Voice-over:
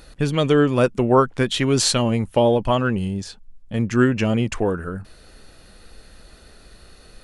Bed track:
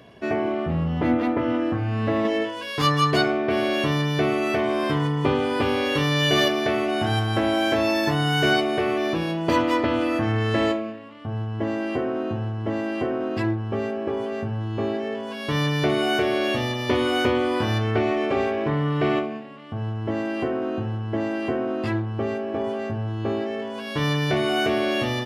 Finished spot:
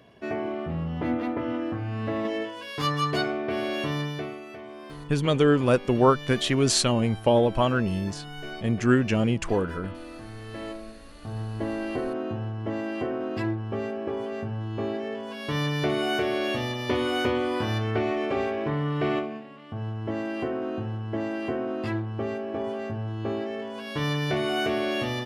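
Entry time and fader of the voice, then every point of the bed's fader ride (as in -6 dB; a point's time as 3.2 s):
4.90 s, -3.5 dB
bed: 4.03 s -6 dB
4.46 s -18.5 dB
10.37 s -18.5 dB
11.41 s -4 dB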